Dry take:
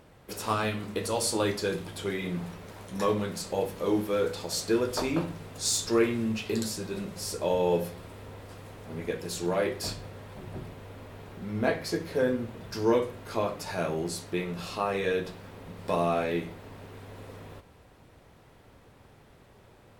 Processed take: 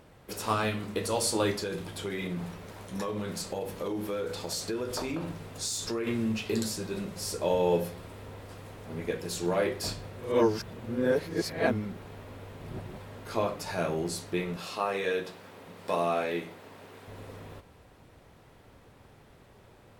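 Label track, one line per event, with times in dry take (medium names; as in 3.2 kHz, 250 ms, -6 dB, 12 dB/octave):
1.540000	6.070000	compression, threshold -29 dBFS
10.170000	13.170000	reverse
14.560000	17.080000	high-pass 330 Hz 6 dB/octave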